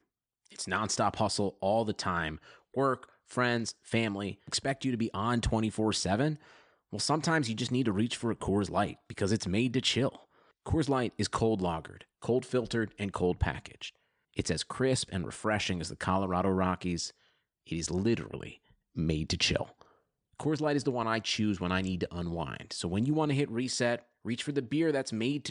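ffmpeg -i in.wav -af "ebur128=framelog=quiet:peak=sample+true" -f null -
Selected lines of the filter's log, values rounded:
Integrated loudness:
  I:         -31.5 LUFS
  Threshold: -41.9 LUFS
Loudness range:
  LRA:         2.2 LU
  Threshold: -52.0 LUFS
  LRA low:   -33.2 LUFS
  LRA high:  -31.0 LUFS
Sample peak:
  Peak:      -14.0 dBFS
True peak:
  Peak:      -14.0 dBFS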